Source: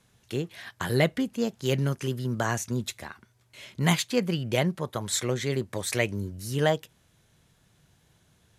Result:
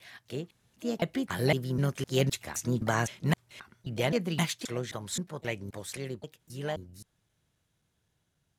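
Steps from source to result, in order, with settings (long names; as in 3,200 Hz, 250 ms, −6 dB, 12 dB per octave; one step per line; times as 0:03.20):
slices reordered back to front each 259 ms, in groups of 3
source passing by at 0:02.58, 7 m/s, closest 8.4 metres
pitch-shifted copies added +5 semitones −14 dB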